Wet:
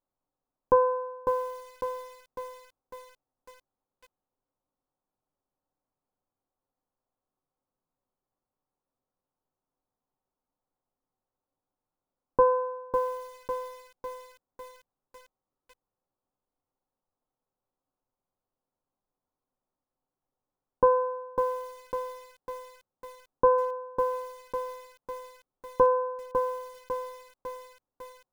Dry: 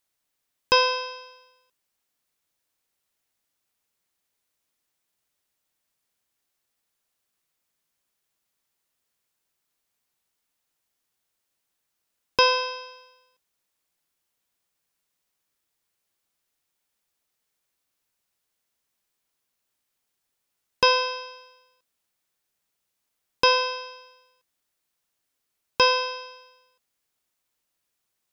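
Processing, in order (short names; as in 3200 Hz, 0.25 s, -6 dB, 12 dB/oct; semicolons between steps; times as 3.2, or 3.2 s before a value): inverse Chebyshev low-pass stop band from 2800 Hz, stop band 50 dB; on a send at -7.5 dB: reverb, pre-delay 4 ms; on the sum: lo-fi delay 0.551 s, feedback 55%, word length 8-bit, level -6 dB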